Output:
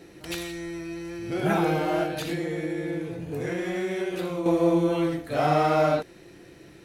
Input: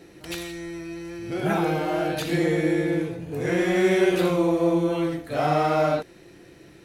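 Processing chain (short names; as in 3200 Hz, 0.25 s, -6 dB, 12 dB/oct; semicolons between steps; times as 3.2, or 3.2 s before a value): 2.03–4.46 compressor 5:1, threshold -27 dBFS, peak gain reduction 11 dB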